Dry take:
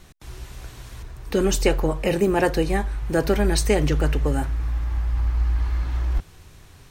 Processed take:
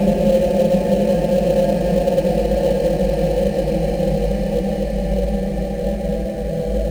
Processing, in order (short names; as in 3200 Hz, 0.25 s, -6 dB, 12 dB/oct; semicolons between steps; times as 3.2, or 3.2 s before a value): EQ curve 130 Hz 0 dB, 210 Hz +7 dB, 380 Hz -11 dB, 560 Hz +11 dB, 950 Hz -14 dB, 1400 Hz -18 dB, 2400 Hz -2 dB, 3400 Hz -8 dB, 5100 Hz -1 dB, 7200 Hz -6 dB; Paulstretch 9.7×, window 1.00 s, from 2.28; in parallel at -12 dB: sample-rate reducer 3600 Hz, jitter 20%